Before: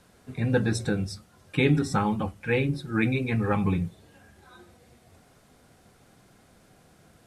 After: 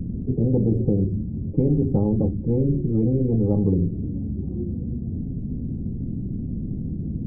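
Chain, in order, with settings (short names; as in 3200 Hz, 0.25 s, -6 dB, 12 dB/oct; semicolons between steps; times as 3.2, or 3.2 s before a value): inverse Chebyshev low-pass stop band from 1400 Hz, stop band 80 dB; spectral compressor 4:1; gain +7.5 dB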